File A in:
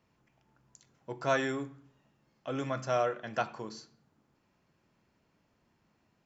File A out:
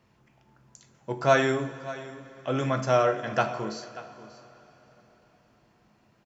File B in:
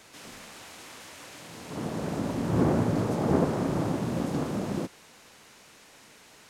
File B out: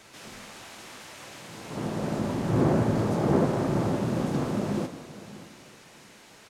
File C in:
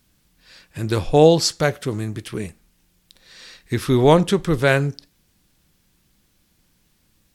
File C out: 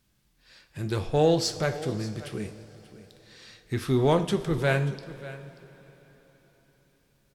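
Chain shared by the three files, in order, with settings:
treble shelf 8.1 kHz -4 dB; in parallel at -9 dB: overload inside the chain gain 20 dB; on the sum: delay 586 ms -17 dB; two-slope reverb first 0.41 s, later 4.5 s, from -17 dB, DRR 7.5 dB; normalise loudness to -27 LUFS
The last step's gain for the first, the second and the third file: +4.5 dB, -1.5 dB, -10.0 dB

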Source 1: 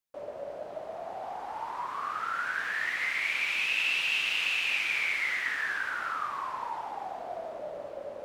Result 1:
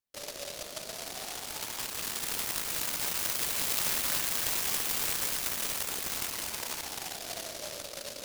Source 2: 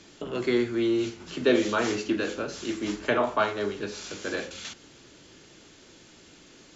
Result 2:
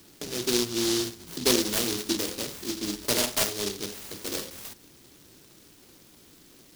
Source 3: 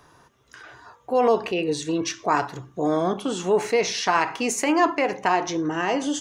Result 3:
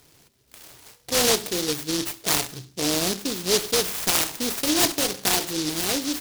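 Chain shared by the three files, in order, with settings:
delay time shaken by noise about 4.5 kHz, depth 0.31 ms; trim -1.5 dB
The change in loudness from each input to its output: -1.0 LU, +0.5 LU, +0.5 LU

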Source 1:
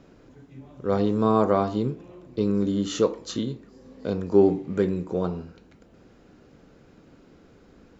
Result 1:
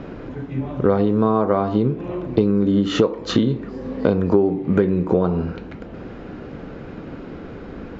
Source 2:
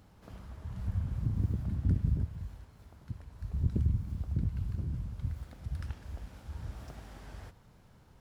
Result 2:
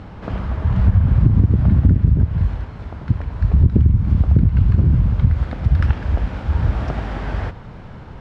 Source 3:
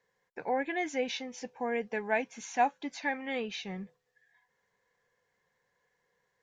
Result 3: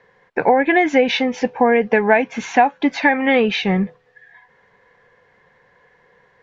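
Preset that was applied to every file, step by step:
low-pass 2.7 kHz 12 dB/octave; compression 12:1, threshold -32 dBFS; peak normalisation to -1.5 dBFS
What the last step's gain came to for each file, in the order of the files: +19.0 dB, +23.5 dB, +22.5 dB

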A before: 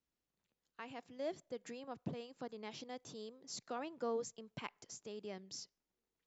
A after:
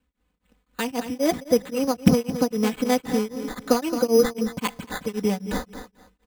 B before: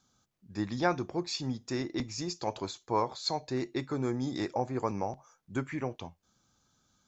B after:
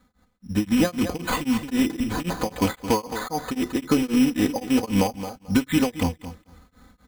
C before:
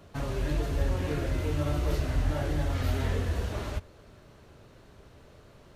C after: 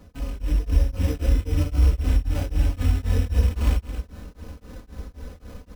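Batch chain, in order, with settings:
rattle on loud lows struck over -37 dBFS, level -30 dBFS; comb 4 ms, depth 94%; compression 12:1, threshold -32 dBFS; peaking EQ 63 Hz +7 dB 1.1 oct; on a send: feedback delay 219 ms, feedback 22%, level -11.5 dB; on the sum: level rider gain up to 9 dB; short-mantissa float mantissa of 4-bit; bass shelf 320 Hz +8.5 dB; careless resampling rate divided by 8×, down none, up hold; band-stop 720 Hz, Q 22; tremolo of two beating tones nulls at 3.8 Hz; normalise loudness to -24 LUFS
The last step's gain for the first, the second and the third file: +10.5 dB, +4.0 dB, -2.5 dB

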